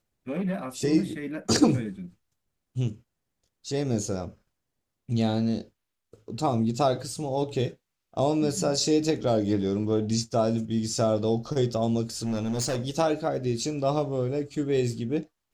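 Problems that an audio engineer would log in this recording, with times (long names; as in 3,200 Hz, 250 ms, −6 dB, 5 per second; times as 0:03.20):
0:12.17–0:12.82: clipping −24 dBFS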